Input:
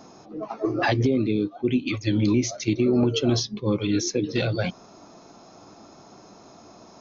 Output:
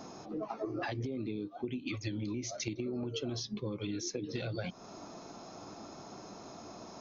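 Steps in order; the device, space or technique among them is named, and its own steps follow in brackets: serial compression, leveller first (compressor, threshold -23 dBFS, peak gain reduction 7 dB; compressor 4:1, threshold -36 dBFS, peak gain reduction 12 dB)

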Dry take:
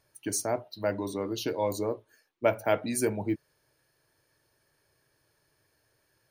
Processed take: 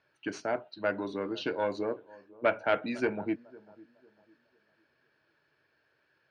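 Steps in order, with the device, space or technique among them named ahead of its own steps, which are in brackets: analogue delay pedal into a guitar amplifier (analogue delay 0.501 s, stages 4096, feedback 31%, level -22 dB; tube stage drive 16 dB, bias 0.45; speaker cabinet 110–4200 Hz, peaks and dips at 110 Hz -9 dB, 1500 Hz +9 dB, 2600 Hz +5 dB)

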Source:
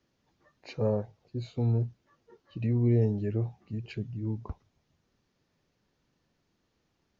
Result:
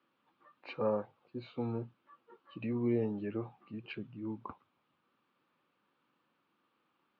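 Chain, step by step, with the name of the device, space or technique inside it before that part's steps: phone earpiece (speaker cabinet 340–3100 Hz, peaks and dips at 420 Hz -8 dB, 660 Hz -9 dB, 1200 Hz +7 dB, 1900 Hz -7 dB); gain +3.5 dB

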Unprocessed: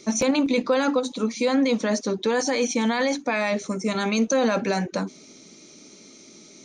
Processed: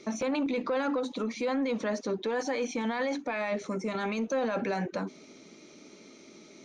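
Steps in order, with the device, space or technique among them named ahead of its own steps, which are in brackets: soft clipper into limiter (soft clip -12.5 dBFS, distortion -24 dB; limiter -22 dBFS, peak gain reduction 8 dB); tone controls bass -5 dB, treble -13 dB

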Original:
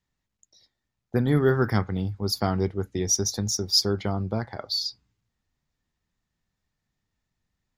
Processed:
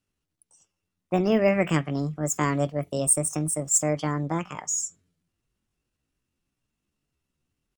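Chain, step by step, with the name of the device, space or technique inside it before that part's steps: 2.55–3.18 high shelf 5100 Hz +5.5 dB; chipmunk voice (pitch shift +7 st)

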